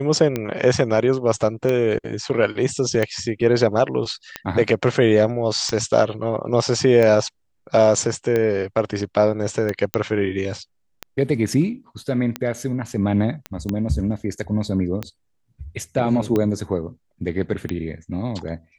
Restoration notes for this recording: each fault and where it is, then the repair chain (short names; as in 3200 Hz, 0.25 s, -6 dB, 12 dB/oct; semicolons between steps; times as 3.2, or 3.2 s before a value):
tick 45 rpm -10 dBFS
9.94 pop -5 dBFS
13.46 pop -14 dBFS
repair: de-click